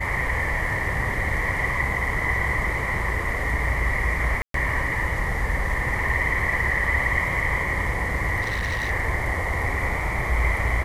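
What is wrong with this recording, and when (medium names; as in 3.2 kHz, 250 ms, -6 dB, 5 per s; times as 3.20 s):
4.42–4.54 s: dropout 123 ms
8.41–8.91 s: clipped -22.5 dBFS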